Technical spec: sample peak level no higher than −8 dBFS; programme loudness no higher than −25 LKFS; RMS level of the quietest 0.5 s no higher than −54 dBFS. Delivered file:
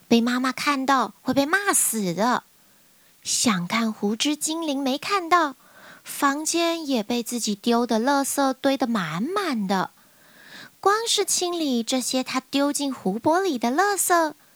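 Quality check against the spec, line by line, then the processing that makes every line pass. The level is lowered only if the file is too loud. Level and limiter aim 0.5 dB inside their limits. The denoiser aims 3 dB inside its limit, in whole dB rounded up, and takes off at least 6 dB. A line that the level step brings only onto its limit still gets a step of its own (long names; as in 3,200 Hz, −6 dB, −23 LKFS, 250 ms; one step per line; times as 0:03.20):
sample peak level −4.5 dBFS: out of spec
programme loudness −22.5 LKFS: out of spec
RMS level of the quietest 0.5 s −56 dBFS: in spec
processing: level −3 dB
brickwall limiter −8.5 dBFS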